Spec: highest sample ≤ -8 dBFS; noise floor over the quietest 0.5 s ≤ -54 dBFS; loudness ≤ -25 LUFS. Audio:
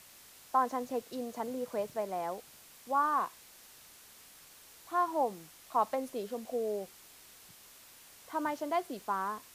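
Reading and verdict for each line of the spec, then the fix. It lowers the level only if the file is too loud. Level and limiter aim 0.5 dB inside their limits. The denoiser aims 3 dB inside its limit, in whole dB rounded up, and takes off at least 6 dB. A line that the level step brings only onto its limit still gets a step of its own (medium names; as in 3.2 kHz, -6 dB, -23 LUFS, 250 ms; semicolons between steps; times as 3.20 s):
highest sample -15.5 dBFS: pass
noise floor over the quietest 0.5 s -56 dBFS: pass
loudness -34.5 LUFS: pass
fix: none needed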